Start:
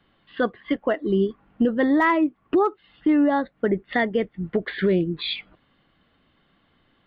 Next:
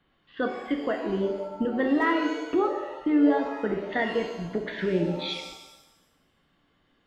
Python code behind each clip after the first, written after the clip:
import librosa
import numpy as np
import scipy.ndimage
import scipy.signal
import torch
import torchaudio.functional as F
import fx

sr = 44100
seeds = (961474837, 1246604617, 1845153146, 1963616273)

y = fx.rev_shimmer(x, sr, seeds[0], rt60_s=1.0, semitones=7, shimmer_db=-8, drr_db=3.5)
y = y * 10.0 ** (-6.0 / 20.0)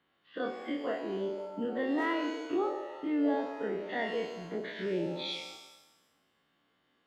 y = fx.spec_dilate(x, sr, span_ms=60)
y = fx.highpass(y, sr, hz=310.0, slope=6)
y = fx.dynamic_eq(y, sr, hz=1400.0, q=1.1, threshold_db=-38.0, ratio=4.0, max_db=-5)
y = y * 10.0 ** (-7.5 / 20.0)